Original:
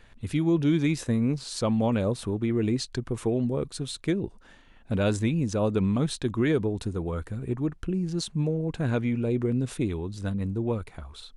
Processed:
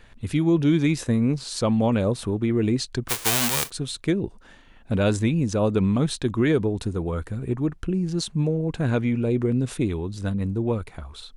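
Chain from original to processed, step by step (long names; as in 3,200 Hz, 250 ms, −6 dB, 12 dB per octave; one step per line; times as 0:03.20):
0:03.08–0:03.69: spectral envelope flattened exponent 0.1
level +3.5 dB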